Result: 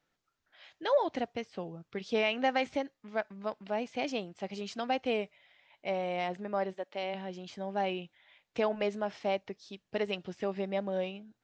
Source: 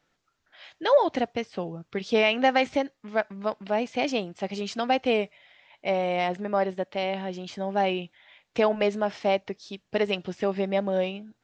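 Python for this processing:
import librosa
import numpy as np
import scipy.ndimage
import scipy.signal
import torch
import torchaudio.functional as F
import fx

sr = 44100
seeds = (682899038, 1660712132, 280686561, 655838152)

y = fx.highpass(x, sr, hz=fx.line((6.72, 450.0), (7.13, 170.0)), slope=12, at=(6.72, 7.13), fade=0.02)
y = F.gain(torch.from_numpy(y), -7.5).numpy()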